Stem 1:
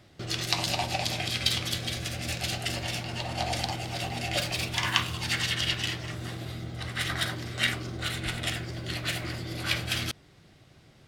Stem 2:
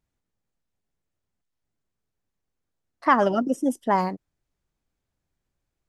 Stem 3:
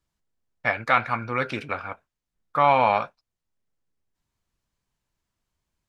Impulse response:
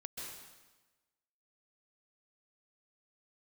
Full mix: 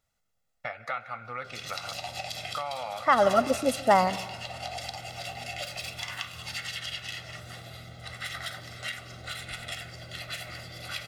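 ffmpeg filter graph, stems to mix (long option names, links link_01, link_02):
-filter_complex "[0:a]adelay=1250,volume=-4dB,asplit=2[link_01][link_02];[link_02]volume=-19.5dB[link_03];[1:a]volume=2dB,asplit=2[link_04][link_05];[link_05]volume=-12dB[link_06];[2:a]volume=-1.5dB,asplit=3[link_07][link_08][link_09];[link_08]volume=-23.5dB[link_10];[link_09]apad=whole_len=259548[link_11];[link_04][link_11]sidechaincompress=threshold=-23dB:ratio=8:attack=16:release=799[link_12];[link_01][link_07]amix=inputs=2:normalize=0,acompressor=threshold=-34dB:ratio=6,volume=0dB[link_13];[3:a]atrim=start_sample=2205[link_14];[link_03][link_06][link_10]amix=inputs=3:normalize=0[link_15];[link_15][link_14]afir=irnorm=-1:irlink=0[link_16];[link_12][link_13][link_16]amix=inputs=3:normalize=0,lowshelf=frequency=340:gain=-9,aecho=1:1:1.5:0.62"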